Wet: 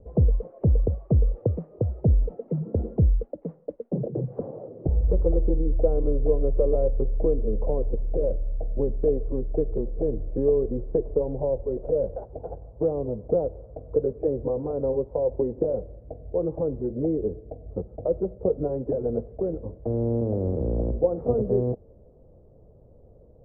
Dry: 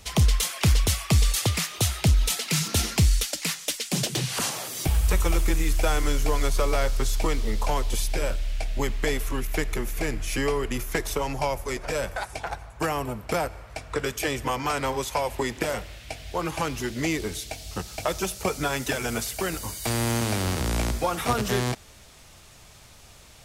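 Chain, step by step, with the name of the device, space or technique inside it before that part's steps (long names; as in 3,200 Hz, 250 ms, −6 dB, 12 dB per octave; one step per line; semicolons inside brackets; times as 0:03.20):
under water (low-pass filter 540 Hz 24 dB per octave; parametric band 500 Hz +11 dB 0.56 octaves)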